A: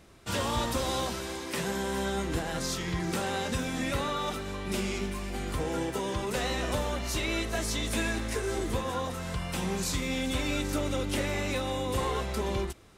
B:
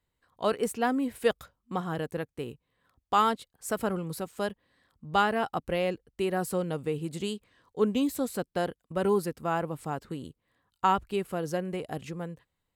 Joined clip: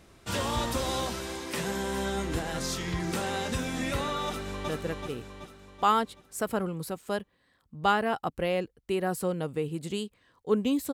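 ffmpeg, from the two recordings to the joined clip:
-filter_complex "[0:a]apad=whole_dur=10.93,atrim=end=10.93,atrim=end=4.692[a];[1:a]atrim=start=1.988:end=8.23[b];[a][b]acrossfade=d=0.004:c1=hsin:c2=hsin,asplit=2[c][d];[d]afade=t=in:st=4.26:d=0.01,afade=t=out:st=4.69:d=0.01,aecho=0:1:380|760|1140|1520|1900|2280|2660:0.707946|0.353973|0.176986|0.0884932|0.0442466|0.0221233|0.0110617[e];[c][e]amix=inputs=2:normalize=0"

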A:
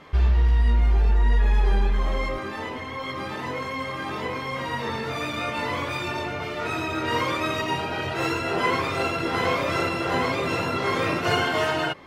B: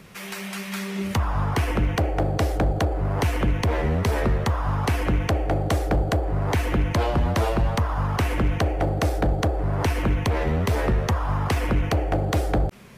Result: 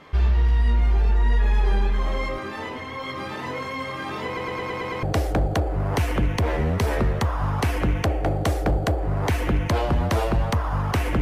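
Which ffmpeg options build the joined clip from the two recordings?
-filter_complex "[0:a]apad=whole_dur=11.21,atrim=end=11.21,asplit=7[a][b][c][d][e][f][g];[a]atrim=end=4.372[h];[b]atrim=start=4.258:end=4.372[i];[c]atrim=start=4.258:end=4.372[j];[d]atrim=start=4.258:end=4.372[k];[e]atrim=start=4.258:end=4.372[l];[f]atrim=start=4.258:end=4.372[m];[g]atrim=start=4.258:end=4.372[n];[1:a]atrim=start=2.278:end=8.46[o];[h][i]acrossfade=d=0.004:c1=hsin:c2=hsin[p];[p][j]acrossfade=d=0.004:c1=hsin:c2=hsin[q];[q][k]acrossfade=d=0.004:c1=hsin:c2=hsin[r];[r][l]acrossfade=d=0.004:c1=hsin:c2=hsin[s];[s][m]acrossfade=d=0.004:c1=hsin:c2=hsin[t];[t][n]acrossfade=d=0.004:c1=hsin:c2=hsin[u];[u][o]acrossfade=d=0.004:c1=hsin:c2=hsin"

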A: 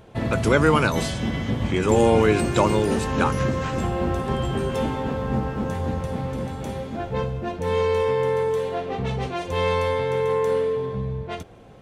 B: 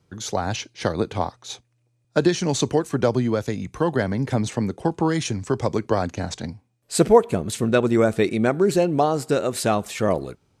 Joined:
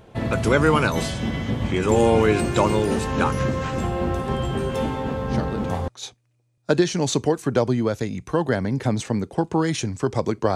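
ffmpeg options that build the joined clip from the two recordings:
-filter_complex "[1:a]asplit=2[a][b];[0:a]apad=whole_dur=10.55,atrim=end=10.55,atrim=end=5.882[c];[b]atrim=start=1.348:end=6.02[d];[a]atrim=start=0.68:end=1.35,asetpts=PTS-STARTPTS,volume=-7dB,afade=t=in:d=0.004:c=hsin,afade=t=out:st=0.666:d=0.004:c=hsin,adelay=229761S[e];[c][d]acrossfade=d=0.004:c1=hsin:c2=hsin[f];[f][e]amix=inputs=2:normalize=0"

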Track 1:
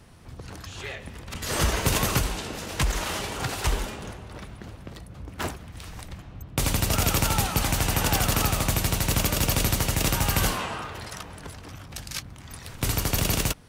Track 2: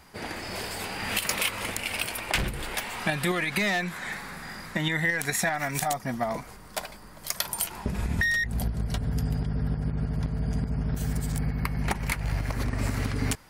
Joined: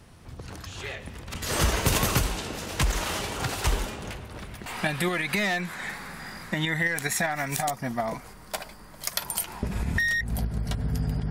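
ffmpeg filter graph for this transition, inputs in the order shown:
-filter_complex "[1:a]asplit=2[a][b];[0:a]apad=whole_dur=11.3,atrim=end=11.3,atrim=end=4.662[c];[b]atrim=start=2.888:end=9.53[d];[a]atrim=start=2.26:end=2.89,asetpts=PTS-STARTPTS,volume=-16.5dB,afade=t=in:d=0.004:c=hsin,afade=t=out:st=0.626:d=0.004:c=hsin,adelay=4030[e];[c][d]acrossfade=d=0.004:c1=hsin:c2=hsin[f];[f][e]amix=inputs=2:normalize=0"

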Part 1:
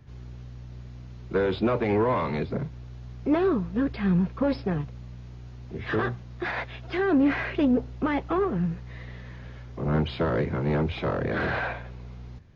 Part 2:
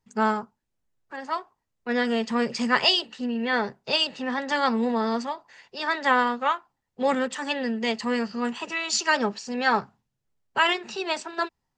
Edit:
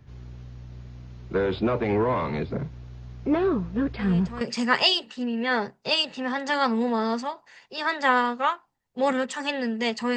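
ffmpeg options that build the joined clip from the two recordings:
-filter_complex "[1:a]asplit=2[a][b];[0:a]apad=whole_dur=10.16,atrim=end=10.16,atrim=end=4.412[c];[b]atrim=start=2.428:end=8.18[d];[a]atrim=start=2.01:end=2.43,asetpts=PTS-STARTPTS,volume=-13dB,afade=t=in:d=0.004:c=hsin,afade=t=out:st=0.416:d=0.004:c=hsin,adelay=3990[e];[c][d]acrossfade=d=0.004:c1=hsin:c2=hsin[f];[f][e]amix=inputs=2:normalize=0"

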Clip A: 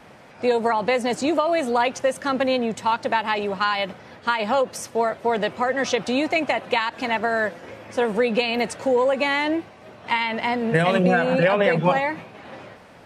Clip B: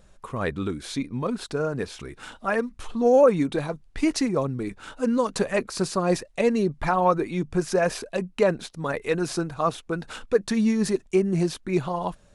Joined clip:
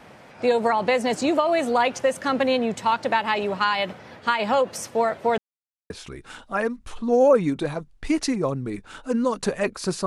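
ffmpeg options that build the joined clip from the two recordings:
-filter_complex "[0:a]apad=whole_dur=10.06,atrim=end=10.06,asplit=2[a][b];[a]atrim=end=5.38,asetpts=PTS-STARTPTS,afade=t=out:st=5.376:d=0.004:c=hsin[c];[b]atrim=start=5.38:end=5.9,asetpts=PTS-STARTPTS,volume=0[d];[1:a]atrim=start=1.83:end=5.99,asetpts=PTS-STARTPTS,afade=t=in:d=0.004:c=hsin[e];[c][d][e]concat=n=3:v=0:a=1"

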